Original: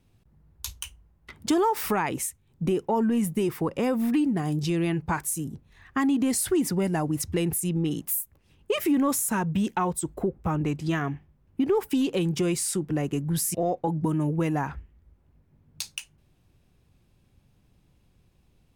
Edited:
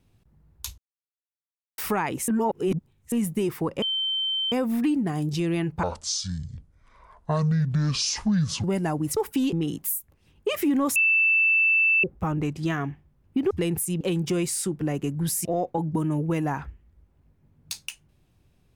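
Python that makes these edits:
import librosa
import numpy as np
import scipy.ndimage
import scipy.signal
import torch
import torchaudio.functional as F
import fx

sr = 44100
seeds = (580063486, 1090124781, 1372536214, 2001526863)

y = fx.edit(x, sr, fx.silence(start_s=0.78, length_s=1.0),
    fx.reverse_span(start_s=2.28, length_s=0.84),
    fx.insert_tone(at_s=3.82, length_s=0.7, hz=3100.0, db=-23.5),
    fx.speed_span(start_s=5.13, length_s=1.6, speed=0.57),
    fx.swap(start_s=7.26, length_s=0.5, other_s=11.74, other_length_s=0.36),
    fx.bleep(start_s=9.19, length_s=1.08, hz=2650.0, db=-17.0), tone=tone)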